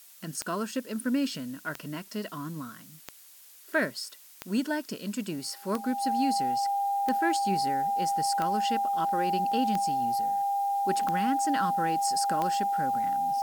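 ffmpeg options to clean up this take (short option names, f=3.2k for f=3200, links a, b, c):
-af "adeclick=t=4,bandreject=f=800:w=30,afftdn=nr=23:nf=-52"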